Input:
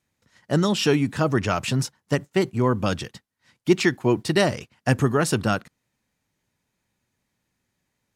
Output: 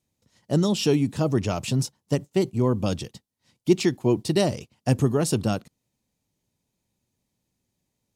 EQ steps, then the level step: peaking EQ 1.6 kHz -13 dB 1.3 oct; 0.0 dB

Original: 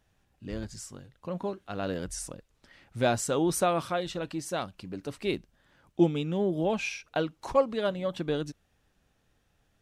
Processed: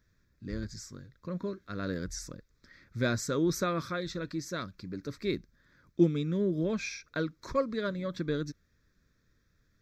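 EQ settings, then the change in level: static phaser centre 2.9 kHz, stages 6; +1.0 dB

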